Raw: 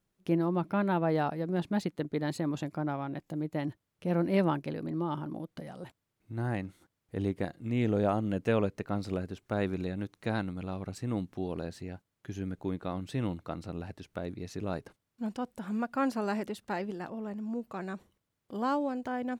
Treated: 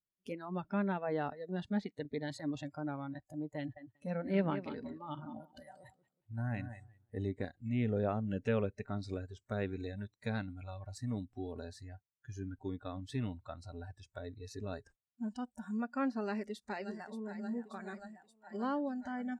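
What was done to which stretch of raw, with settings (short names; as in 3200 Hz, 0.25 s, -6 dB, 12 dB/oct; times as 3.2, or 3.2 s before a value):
3.58–7.15 feedback echo 0.184 s, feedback 29%, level -9.5 dB
16.23–17.38 echo throw 0.58 s, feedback 80%, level -9 dB
whole clip: spectral noise reduction 20 dB; treble ducked by the level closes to 2800 Hz, closed at -26 dBFS; dynamic EQ 890 Hz, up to -5 dB, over -44 dBFS, Q 1.1; gain -3 dB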